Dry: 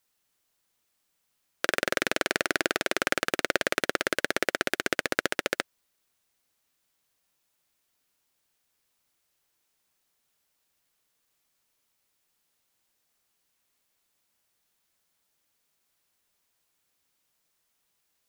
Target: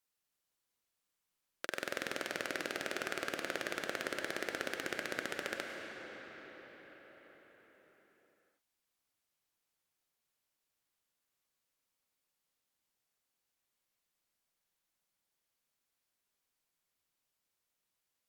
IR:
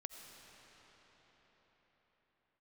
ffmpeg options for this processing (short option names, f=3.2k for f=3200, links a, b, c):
-filter_complex "[0:a]alimiter=limit=-6dB:level=0:latency=1[a];[1:a]atrim=start_sample=2205,asetrate=37485,aresample=44100[b];[a][b]afir=irnorm=-1:irlink=0,volume=-6dB"